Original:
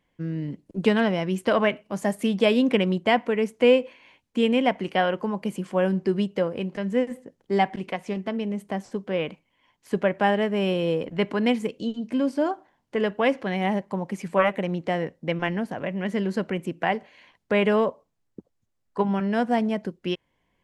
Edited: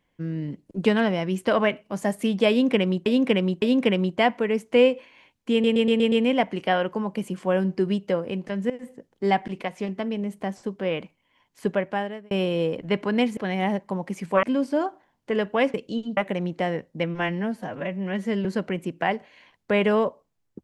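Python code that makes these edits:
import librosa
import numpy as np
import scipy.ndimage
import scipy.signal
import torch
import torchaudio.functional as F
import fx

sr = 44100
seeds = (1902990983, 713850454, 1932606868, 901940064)

y = fx.edit(x, sr, fx.repeat(start_s=2.5, length_s=0.56, count=3),
    fx.stutter(start_s=4.4, slice_s=0.12, count=6),
    fx.fade_in_from(start_s=6.98, length_s=0.25, floor_db=-18.0),
    fx.fade_out_span(start_s=9.94, length_s=0.65),
    fx.swap(start_s=11.65, length_s=0.43, other_s=13.39, other_length_s=1.06),
    fx.stretch_span(start_s=15.32, length_s=0.94, factor=1.5), tone=tone)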